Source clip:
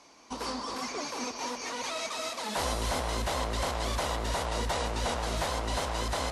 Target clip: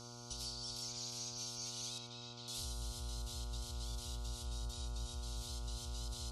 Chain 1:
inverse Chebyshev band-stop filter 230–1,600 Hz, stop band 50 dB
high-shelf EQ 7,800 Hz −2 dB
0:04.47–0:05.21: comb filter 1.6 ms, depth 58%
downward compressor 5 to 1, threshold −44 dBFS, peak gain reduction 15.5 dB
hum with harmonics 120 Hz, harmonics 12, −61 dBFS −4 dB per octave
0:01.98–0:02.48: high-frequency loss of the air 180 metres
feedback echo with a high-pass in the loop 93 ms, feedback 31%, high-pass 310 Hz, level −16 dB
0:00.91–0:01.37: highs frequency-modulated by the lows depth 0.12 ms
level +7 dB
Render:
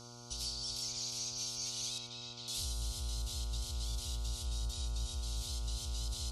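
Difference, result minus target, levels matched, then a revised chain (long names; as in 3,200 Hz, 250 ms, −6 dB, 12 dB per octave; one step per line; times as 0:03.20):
downward compressor: peak gain reduction −5 dB
inverse Chebyshev band-stop filter 230–1,600 Hz, stop band 50 dB
high-shelf EQ 7,800 Hz −2 dB
0:04.47–0:05.21: comb filter 1.6 ms, depth 58%
downward compressor 5 to 1, threshold −50.5 dBFS, peak gain reduction 20.5 dB
hum with harmonics 120 Hz, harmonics 12, −61 dBFS −4 dB per octave
0:01.98–0:02.48: high-frequency loss of the air 180 metres
feedback echo with a high-pass in the loop 93 ms, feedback 31%, high-pass 310 Hz, level −16 dB
0:00.91–0:01.37: highs frequency-modulated by the lows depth 0.12 ms
level +7 dB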